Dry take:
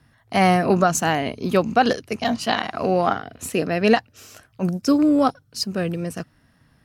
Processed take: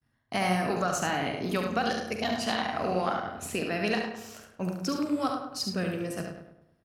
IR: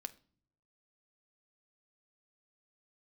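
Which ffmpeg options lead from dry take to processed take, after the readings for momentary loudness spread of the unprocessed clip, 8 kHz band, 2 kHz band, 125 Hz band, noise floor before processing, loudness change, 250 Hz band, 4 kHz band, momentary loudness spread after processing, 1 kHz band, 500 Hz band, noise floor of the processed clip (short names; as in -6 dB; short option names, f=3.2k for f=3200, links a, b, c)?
10 LU, -7.5 dB, -6.5 dB, -9.0 dB, -60 dBFS, -9.0 dB, -10.0 dB, -5.5 dB, 8 LU, -9.0 dB, -9.5 dB, -71 dBFS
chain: -filter_complex "[0:a]agate=range=-33dB:threshold=-48dB:ratio=3:detection=peak,acrossover=split=1100|5700[a][b][c];[a]acompressor=threshold=-26dB:ratio=4[d];[b]acompressor=threshold=-27dB:ratio=4[e];[c]acompressor=threshold=-36dB:ratio=4[f];[d][e][f]amix=inputs=3:normalize=0,asplit=2[g][h];[h]adelay=44,volume=-11dB[i];[g][i]amix=inputs=2:normalize=0,asplit=2[j][k];[k]adelay=103,lowpass=f=2.2k:p=1,volume=-6.5dB,asplit=2[l][m];[m]adelay=103,lowpass=f=2.2k:p=1,volume=0.47,asplit=2[n][o];[o]adelay=103,lowpass=f=2.2k:p=1,volume=0.47,asplit=2[p][q];[q]adelay=103,lowpass=f=2.2k:p=1,volume=0.47,asplit=2[r][s];[s]adelay=103,lowpass=f=2.2k:p=1,volume=0.47,asplit=2[t][u];[u]adelay=103,lowpass=f=2.2k:p=1,volume=0.47[v];[j][l][n][p][r][t][v]amix=inputs=7:normalize=0,asplit=2[w][x];[1:a]atrim=start_sample=2205,adelay=71[y];[x][y]afir=irnorm=-1:irlink=0,volume=-2dB[z];[w][z]amix=inputs=2:normalize=0,volume=-4.5dB"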